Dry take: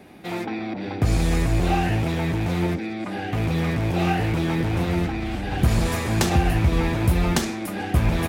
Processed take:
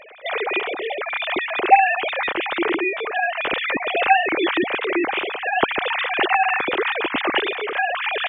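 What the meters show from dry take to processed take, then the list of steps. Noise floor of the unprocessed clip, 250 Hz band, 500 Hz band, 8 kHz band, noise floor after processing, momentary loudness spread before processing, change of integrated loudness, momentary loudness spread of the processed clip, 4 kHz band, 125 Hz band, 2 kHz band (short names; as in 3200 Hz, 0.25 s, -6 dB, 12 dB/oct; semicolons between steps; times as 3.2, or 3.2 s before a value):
-31 dBFS, -4.5 dB, +4.5 dB, under -40 dB, -31 dBFS, 8 LU, +3.0 dB, 6 LU, +7.0 dB, -29.0 dB, +11.0 dB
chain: sine-wave speech; high shelf 2100 Hz +12 dB; gain -2 dB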